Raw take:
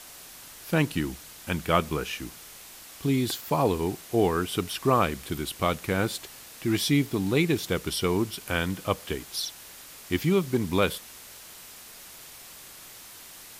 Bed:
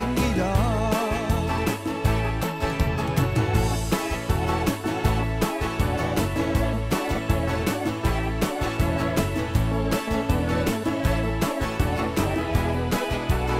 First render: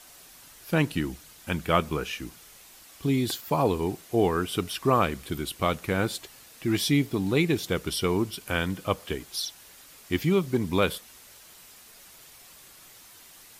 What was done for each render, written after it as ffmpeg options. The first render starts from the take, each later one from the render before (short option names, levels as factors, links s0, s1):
-af "afftdn=nr=6:nf=-47"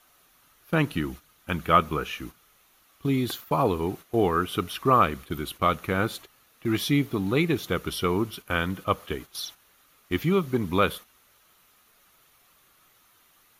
-af "agate=range=0.355:threshold=0.0112:ratio=16:detection=peak,equalizer=f=1250:t=o:w=0.33:g=8,equalizer=f=5000:t=o:w=0.33:g=-7,equalizer=f=8000:t=o:w=0.33:g=-11"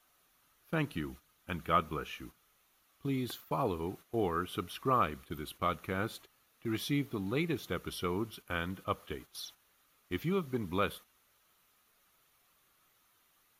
-af "volume=0.335"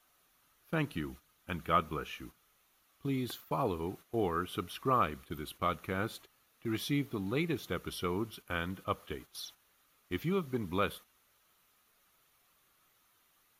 -af anull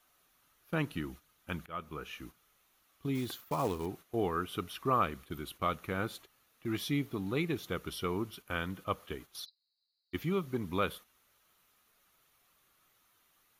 -filter_complex "[0:a]asettb=1/sr,asplit=3[s0][s1][s2];[s0]atrim=end=3.154[s3];[s1]atrim=start=3.15:end=3.86,asetpts=PTS-STARTPTS,afade=t=in:d=0.004:c=qsin,afade=t=out:st=0.706:d=0.004:c=qsin,acrusher=bits=4:mode=log:mix=0:aa=0.000001[s4];[s2]atrim=start=3.856[s5];[s3][s4]acrossfade=d=0.004:c1=hsin:c2=qsin[s6];[s6][s5]acrossfade=d=0.004:c1=qsin:c2=hsin,asplit=3[s7][s8][s9];[s7]afade=t=out:st=9.44:d=0.02[s10];[s8]asuperpass=centerf=4400:order=12:qfactor=3.9,afade=t=in:st=9.44:d=0.02,afade=t=out:st=10.13:d=0.02[s11];[s9]afade=t=in:st=10.13:d=0.02[s12];[s10][s11][s12]amix=inputs=3:normalize=0,asplit=2[s13][s14];[s13]atrim=end=1.66,asetpts=PTS-STARTPTS,afade=t=out:st=1.656:d=0.004:c=hsin:silence=0.0841395[s15];[s14]atrim=start=1.66,asetpts=PTS-STARTPTS,afade=t=in:d=0.55:silence=0.0841395[s16];[s15][s16]concat=n=2:v=0:a=1"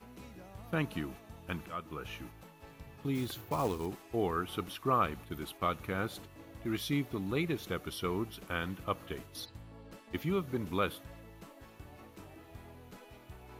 -filter_complex "[1:a]volume=0.0398[s0];[0:a][s0]amix=inputs=2:normalize=0"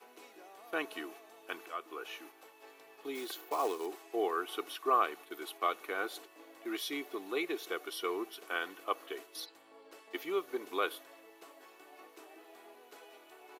-af "highpass=f=370:w=0.5412,highpass=f=370:w=1.3066,aecho=1:1:2.7:0.43"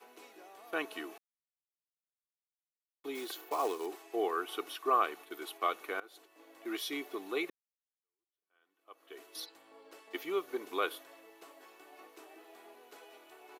-filter_complex "[0:a]asplit=5[s0][s1][s2][s3][s4];[s0]atrim=end=1.18,asetpts=PTS-STARTPTS,afade=t=out:st=1.176:d=0.004:c=hsin[s5];[s1]atrim=start=1.18:end=3.04,asetpts=PTS-STARTPTS,volume=0[s6];[s2]atrim=start=3.04:end=6,asetpts=PTS-STARTPTS,afade=t=in:d=0.004:c=hsin,afade=t=out:st=2.956:d=0.004:c=hsin:silence=0.0841395[s7];[s3]atrim=start=6:end=7.5,asetpts=PTS-STARTPTS,afade=t=in:d=0.71:silence=0.0841395,afade=t=out:st=1.496:d=0.004:c=hsin[s8];[s4]atrim=start=7.5,asetpts=PTS-STARTPTS,afade=t=in:d=1.78:c=exp[s9];[s5][s6][s7][s8][s9]concat=n=5:v=0:a=1"